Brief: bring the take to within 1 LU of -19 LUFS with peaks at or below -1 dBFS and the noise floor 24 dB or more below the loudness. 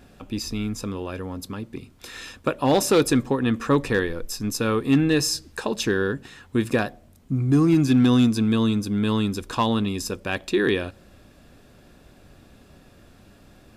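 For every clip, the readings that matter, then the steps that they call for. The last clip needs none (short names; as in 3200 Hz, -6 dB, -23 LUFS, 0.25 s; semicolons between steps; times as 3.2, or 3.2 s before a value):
clipped 0.3%; flat tops at -11.0 dBFS; loudness -23.0 LUFS; peak -11.0 dBFS; loudness target -19.0 LUFS
-> clip repair -11 dBFS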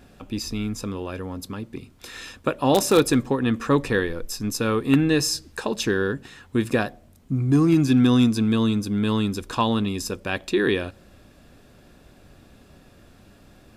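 clipped 0.0%; loudness -22.5 LUFS; peak -2.0 dBFS; loudness target -19.0 LUFS
-> gain +3.5 dB; limiter -1 dBFS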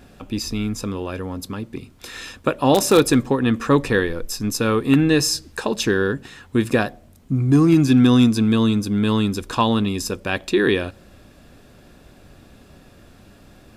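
loudness -19.5 LUFS; peak -1.0 dBFS; noise floor -49 dBFS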